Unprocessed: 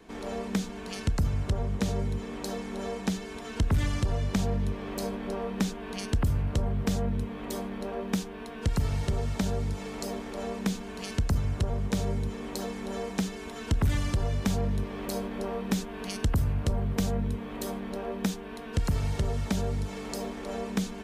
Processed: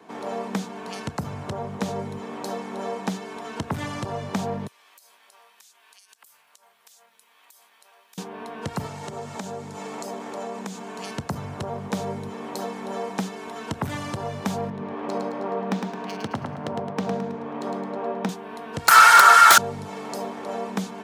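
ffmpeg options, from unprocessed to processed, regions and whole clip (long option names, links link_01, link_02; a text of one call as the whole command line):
ffmpeg -i in.wav -filter_complex "[0:a]asettb=1/sr,asplit=3[link_01][link_02][link_03];[link_01]atrim=end=4.674[link_04];[link_02]atrim=start=4.67:end=8.18,asetpts=PTS-STARTPTS,afade=type=in:duration=0.004:curve=qsin,afade=type=out:start_time=3.506:duration=0.004:curve=qsin,highpass=frequency=1500:poles=1,aderivative,acompressor=threshold=-49dB:ratio=16:attack=3.2:release=140:knee=1:detection=peak[link_05];[link_03]atrim=start=8.176[link_06];[link_04][link_05]acrossfade=duration=0.004:curve1=hsin:curve2=qsin[link_07];[link_07][link_06]acrossfade=duration=0.004:curve1=qsin:curve2=hsin,asettb=1/sr,asplit=3[link_08][link_09][link_10];[link_08]atrim=end=8.864[link_11];[link_09]atrim=start=8.86:end=11.04,asetpts=PTS-STARTPTS,afade=type=in:duration=0.004:curve=qsin,afade=type=out:start_time=2.176:duration=0.004:curve=qsin,highpass=110,equalizer=frequency=7200:width_type=o:width=0.51:gain=6.5,acompressor=threshold=-33dB:ratio=3:attack=3.2:release=140:knee=1:detection=peak[link_12];[link_10]atrim=start=11.036[link_13];[link_11][link_12]acrossfade=duration=0.004:curve1=hsin:curve2=qsin[link_14];[link_14][link_13]acrossfade=duration=0.004:curve1=qsin:curve2=hsin,asettb=1/sr,asplit=3[link_15][link_16][link_17];[link_15]atrim=end=14.704[link_18];[link_16]atrim=start=14.7:end=18.29,asetpts=PTS-STARTPTS,afade=type=in:duration=0.004:curve=qsin,afade=type=out:start_time=3.586:duration=0.004:curve=qsin,highpass=130,adynamicsmooth=sensitivity=4.5:basefreq=2600,aecho=1:1:108|216|324|432|540:0.596|0.262|0.115|0.0507|0.0223,atrim=end_sample=158319[link_19];[link_17]atrim=start=18.286[link_20];[link_18][link_19]acrossfade=duration=0.004:curve1=hsin:curve2=qsin[link_21];[link_21][link_20]acrossfade=duration=0.004:curve1=qsin:curve2=hsin,asettb=1/sr,asplit=3[link_22][link_23][link_24];[link_22]atrim=end=18.884[link_25];[link_23]atrim=start=18.88:end=19.58,asetpts=PTS-STARTPTS,afade=type=in:duration=0.004:curve=qsin,afade=type=out:start_time=0.696:duration=0.004:curve=qsin,highpass=frequency=1400:width_type=q:width=10,highshelf=frequency=5700:gain=10,aeval=exprs='0.299*sin(PI/2*7.08*val(0)/0.299)':channel_layout=same[link_26];[link_24]atrim=start=19.576[link_27];[link_25][link_26]acrossfade=duration=0.004:curve1=hsin:curve2=qsin[link_28];[link_28][link_27]acrossfade=duration=0.004:curve1=qsin:curve2=hsin,highpass=frequency=120:width=0.5412,highpass=frequency=120:width=1.3066,equalizer=frequency=880:width=1:gain=9.5" out.wav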